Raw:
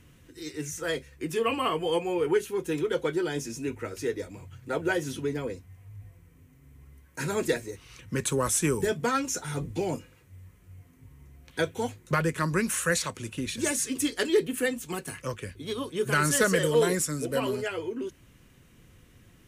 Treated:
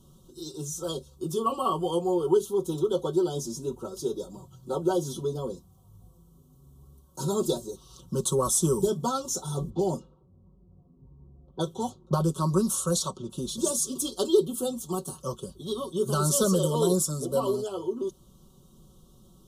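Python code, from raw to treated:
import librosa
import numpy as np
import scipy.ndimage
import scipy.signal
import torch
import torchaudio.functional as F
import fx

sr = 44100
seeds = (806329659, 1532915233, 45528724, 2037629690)

y = fx.env_lowpass(x, sr, base_hz=500.0, full_db=-25.0, at=(9.69, 13.29), fade=0.02)
y = scipy.signal.sosfilt(scipy.signal.ellip(3, 1.0, 60, [1200.0, 3400.0], 'bandstop', fs=sr, output='sos'), y)
y = y + 0.78 * np.pad(y, (int(5.3 * sr / 1000.0), 0))[:len(y)]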